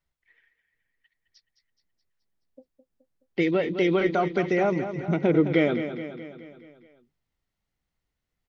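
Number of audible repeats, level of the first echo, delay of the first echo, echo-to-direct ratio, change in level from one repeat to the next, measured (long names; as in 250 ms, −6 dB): 5, −10.0 dB, 212 ms, −8.5 dB, −5.0 dB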